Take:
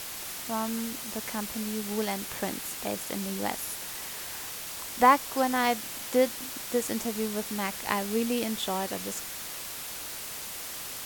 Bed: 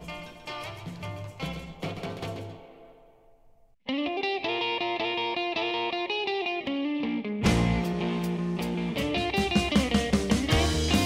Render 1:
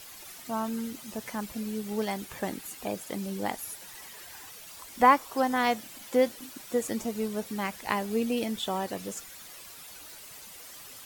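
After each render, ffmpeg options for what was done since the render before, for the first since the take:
-af "afftdn=nr=11:nf=-39"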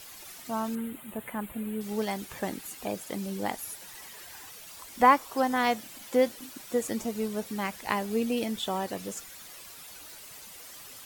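-filter_complex "[0:a]asettb=1/sr,asplit=3[a][b][c];[a]atrim=end=0.754[d];[b]atrim=start=0.75:end=1.81,asetpts=PTS-STARTPTS,afade=t=in:d=0.004:c=qsin,afade=t=out:st=1.056:d=0.004:c=qsin,asuperstop=centerf=5400:order=4:qfactor=0.91[e];[c]atrim=start=1.806[f];[d][e]acrossfade=d=0.004:c1=hsin:c2=qsin[g];[g][f]acrossfade=d=0.004:c1=qsin:c2=hsin"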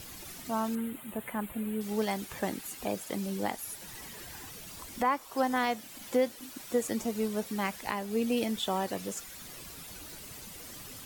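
-filter_complex "[0:a]acrossover=split=340[a][b];[a]acompressor=mode=upward:threshold=-41dB:ratio=2.5[c];[c][b]amix=inputs=2:normalize=0,alimiter=limit=-18dB:level=0:latency=1:release=415"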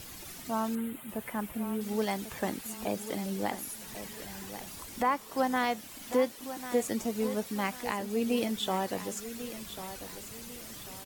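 -af "aecho=1:1:1094|2188|3282|4376:0.251|0.0929|0.0344|0.0127"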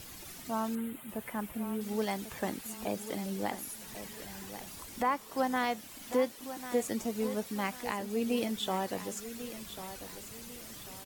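-af "volume=-2dB"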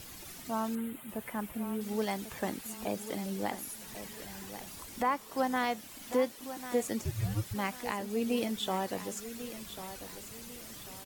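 -filter_complex "[0:a]asplit=3[a][b][c];[a]afade=t=out:st=7.01:d=0.02[d];[b]afreqshift=-320,afade=t=in:st=7.01:d=0.02,afade=t=out:st=7.53:d=0.02[e];[c]afade=t=in:st=7.53:d=0.02[f];[d][e][f]amix=inputs=3:normalize=0"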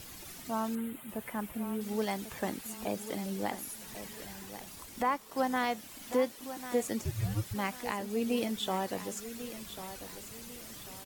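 -filter_complex "[0:a]asettb=1/sr,asplit=3[a][b][c];[a]atrim=end=4.334[d];[b]atrim=start=4.33:end=5.37,asetpts=PTS-STARTPTS,afade=t=in:d=0.004:c=qsin,afade=t=out:st=1.036:d=0.004:c=qsin,aeval=exprs='sgn(val(0))*max(abs(val(0))-0.00112,0)':c=same[e];[c]atrim=start=5.366[f];[d][e]acrossfade=d=0.004:c1=hsin:c2=qsin[g];[g][f]acrossfade=d=0.004:c1=qsin:c2=hsin"

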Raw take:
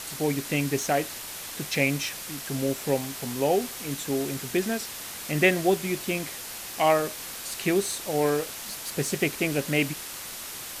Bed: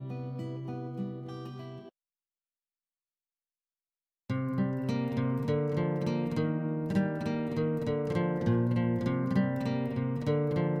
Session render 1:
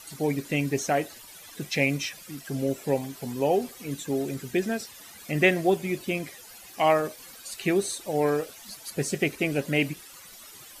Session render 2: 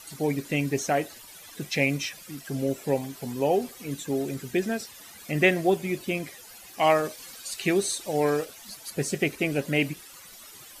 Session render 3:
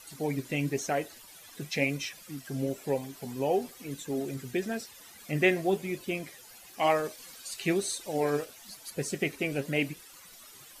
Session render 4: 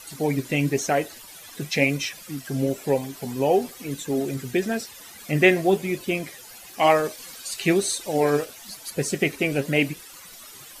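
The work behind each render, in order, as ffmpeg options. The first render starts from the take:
-af "afftdn=nr=14:nf=-38"
-filter_complex "[0:a]asettb=1/sr,asplit=3[a][b][c];[a]atrim=end=6.824[d];[b]atrim=start=6.82:end=8.45,asetpts=PTS-STARTPTS,afade=t=in:d=0.004:c=qsin,afade=t=out:st=1.626:d=0.004:c=qsin,equalizer=f=5.2k:w=0.48:g=4[e];[c]atrim=start=8.446[f];[d][e]acrossfade=d=0.004:c1=hsin:c2=qsin[g];[g][f]acrossfade=d=0.004:c1=qsin:c2=hsin"
-af "flanger=delay=1.9:depth=6.3:regen=71:speed=1:shape=sinusoidal"
-af "volume=7.5dB"

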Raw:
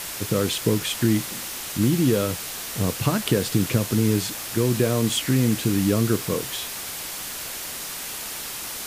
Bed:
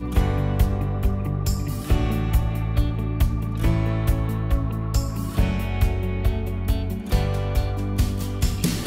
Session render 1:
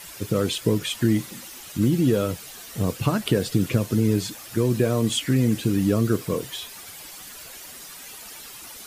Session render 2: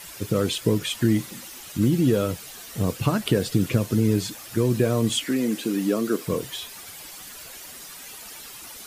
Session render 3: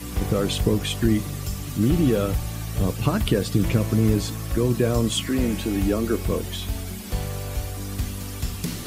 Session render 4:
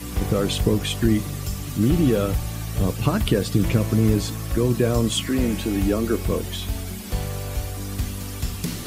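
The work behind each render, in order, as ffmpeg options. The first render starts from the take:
-af "afftdn=nr=11:nf=-33"
-filter_complex "[0:a]asettb=1/sr,asplit=3[a][b][c];[a]atrim=end=5.244[d];[b]atrim=start=5.24:end=6.27,asetpts=PTS-STARTPTS,afade=t=in:d=0.004:c=qsin,afade=t=out:st=1.026:d=0.004:c=qsin,highpass=f=220:w=0.5412,highpass=f=220:w=1.3066[e];[c]atrim=start=6.266[f];[d][e]acrossfade=d=0.004:c1=hsin:c2=qsin[g];[g][f]acrossfade=d=0.004:c1=qsin:c2=hsin"
-filter_complex "[1:a]volume=-6.5dB[a];[0:a][a]amix=inputs=2:normalize=0"
-af "volume=1dB"

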